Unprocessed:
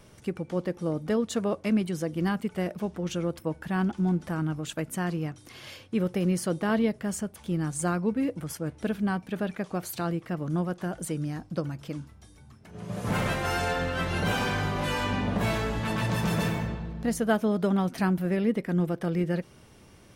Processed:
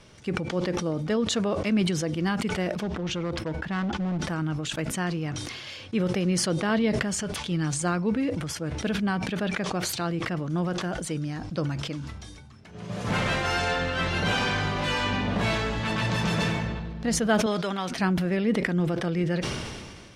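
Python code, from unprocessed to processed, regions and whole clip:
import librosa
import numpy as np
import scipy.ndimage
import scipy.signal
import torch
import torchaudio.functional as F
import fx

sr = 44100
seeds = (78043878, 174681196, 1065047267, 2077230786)

y = fx.chain(x, sr, fx.lowpass(hz=2800.0, slope=6),
    fx.clip_hard(threshold_db=-25.5), at=(2.83, 4.19))
y = fx.chain(y, sr, fx.peak_eq(hz=3500.0, db=4.0, octaves=2.0),
    fx.comb(ms=6.9, depth=0.31), at=(7.18, 7.82))
y = fx.chain(y, sr, fx.lowpass(hz=2400.0, slope=6),
    fx.tilt_eq(slope=4.5), at=(17.46, 17.91))
y = scipy.signal.sosfilt(scipy.signal.butter(2, 5100.0, 'lowpass', fs=sr, output='sos'), y)
y = fx.high_shelf(y, sr, hz=2300.0, db=9.0)
y = fx.sustainer(y, sr, db_per_s=31.0)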